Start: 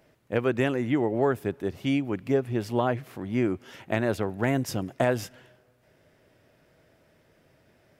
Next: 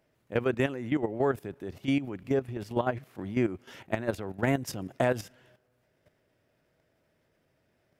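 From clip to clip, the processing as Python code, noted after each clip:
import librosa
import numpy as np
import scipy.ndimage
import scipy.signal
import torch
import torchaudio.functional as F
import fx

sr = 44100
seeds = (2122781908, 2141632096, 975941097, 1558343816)

y = fx.level_steps(x, sr, step_db=12)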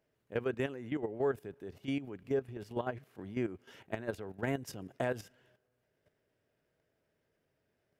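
y = fx.small_body(x, sr, hz=(430.0, 1600.0, 2900.0), ring_ms=45, db=6)
y = F.gain(torch.from_numpy(y), -8.5).numpy()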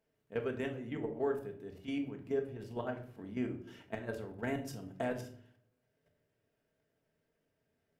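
y = fx.room_shoebox(x, sr, seeds[0], volume_m3=670.0, walls='furnished', distance_m=1.6)
y = F.gain(torch.from_numpy(y), -4.0).numpy()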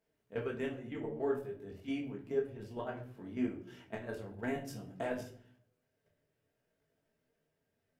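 y = fx.detune_double(x, sr, cents=20)
y = F.gain(torch.from_numpy(y), 3.0).numpy()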